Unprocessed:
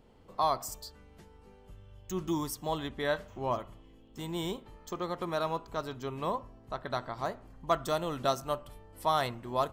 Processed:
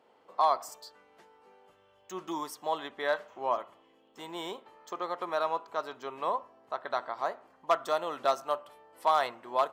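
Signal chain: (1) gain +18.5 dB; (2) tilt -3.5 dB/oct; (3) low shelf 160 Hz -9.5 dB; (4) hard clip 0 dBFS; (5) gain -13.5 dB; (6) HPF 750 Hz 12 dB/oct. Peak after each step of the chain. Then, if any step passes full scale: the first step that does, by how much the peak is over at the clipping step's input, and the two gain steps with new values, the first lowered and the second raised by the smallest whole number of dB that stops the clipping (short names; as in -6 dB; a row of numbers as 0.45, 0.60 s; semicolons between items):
+4.0, +5.0, +4.5, 0.0, -13.5, -12.5 dBFS; step 1, 4.5 dB; step 1 +13.5 dB, step 5 -8.5 dB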